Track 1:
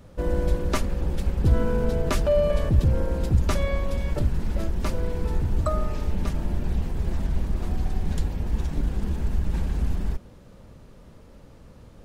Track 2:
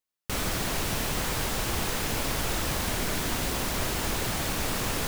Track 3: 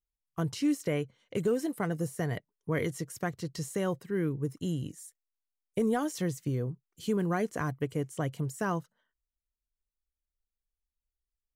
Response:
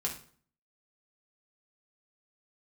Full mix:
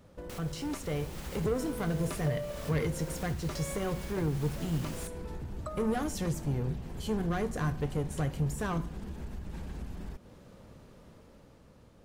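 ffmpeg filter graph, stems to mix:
-filter_complex "[0:a]lowshelf=frequency=68:gain=-10.5,volume=-6.5dB[link_01];[1:a]volume=-3dB[link_02];[2:a]asoftclip=type=tanh:threshold=-28.5dB,volume=-7.5dB,asplit=3[link_03][link_04][link_05];[link_04]volume=-5dB[link_06];[link_05]apad=whole_len=223709[link_07];[link_02][link_07]sidechaincompress=threshold=-51dB:ratio=8:attack=16:release=835[link_08];[link_01][link_08]amix=inputs=2:normalize=0,acompressor=threshold=-42dB:ratio=4,volume=0dB[link_09];[3:a]atrim=start_sample=2205[link_10];[link_06][link_10]afir=irnorm=-1:irlink=0[link_11];[link_03][link_09][link_11]amix=inputs=3:normalize=0,dynaudnorm=framelen=220:gausssize=9:maxgain=4.5dB"

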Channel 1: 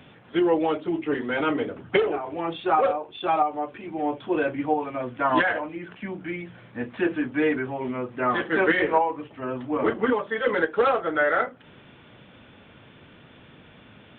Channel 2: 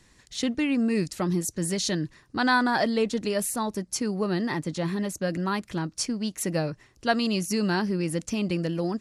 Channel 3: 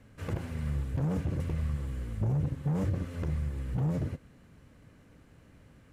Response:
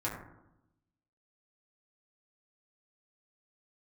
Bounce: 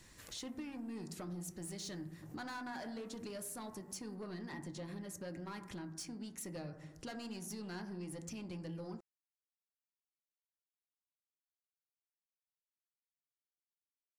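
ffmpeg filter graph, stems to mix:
-filter_complex "[1:a]highshelf=frequency=7000:gain=4.5,asoftclip=type=tanh:threshold=-23.5dB,volume=-3.5dB,asplit=2[link_01][link_02];[link_02]volume=-15.5dB[link_03];[2:a]aemphasis=mode=production:type=riaa,acompressor=threshold=-38dB:ratio=6,volume=-14dB[link_04];[link_01][link_04]amix=inputs=2:normalize=0,acompressor=threshold=-41dB:ratio=3,volume=0dB[link_05];[3:a]atrim=start_sample=2205[link_06];[link_03][link_06]afir=irnorm=-1:irlink=0[link_07];[link_05][link_07]amix=inputs=2:normalize=0,acompressor=threshold=-49dB:ratio=2"

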